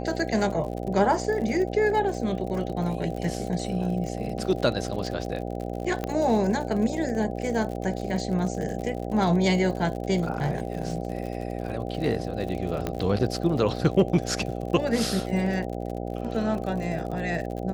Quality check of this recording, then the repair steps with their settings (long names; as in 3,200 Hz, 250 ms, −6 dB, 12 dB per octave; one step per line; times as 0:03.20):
mains buzz 60 Hz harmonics 13 −32 dBFS
surface crackle 57 per second −33 dBFS
0:06.04: click −15 dBFS
0:12.87: click −14 dBFS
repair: click removal
hum removal 60 Hz, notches 13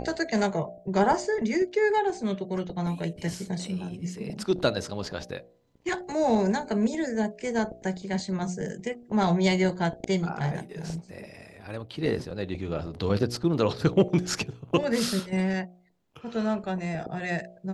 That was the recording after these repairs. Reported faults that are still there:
0:12.87: click